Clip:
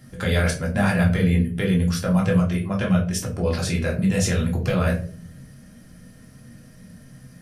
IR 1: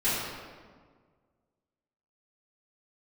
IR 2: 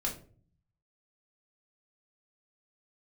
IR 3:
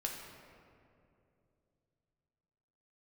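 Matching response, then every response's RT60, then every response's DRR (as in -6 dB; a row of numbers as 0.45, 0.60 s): 2; 1.7, 0.45, 2.7 s; -14.0, -3.0, -0.5 dB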